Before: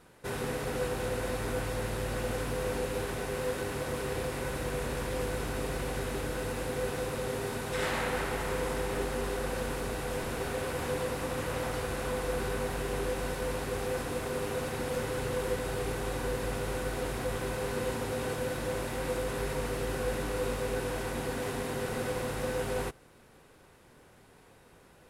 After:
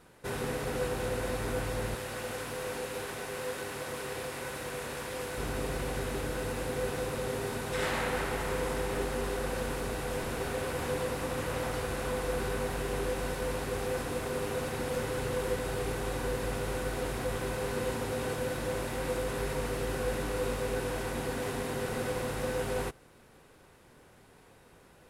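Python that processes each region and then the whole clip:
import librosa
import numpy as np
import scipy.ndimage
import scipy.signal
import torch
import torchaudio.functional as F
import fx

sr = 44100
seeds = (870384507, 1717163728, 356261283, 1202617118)

y = fx.chain(x, sr, fx.highpass(hz=74.0, slope=12),
    fx.low_shelf(hz=500.0, db=-8.0), at=(1.95, 5.38))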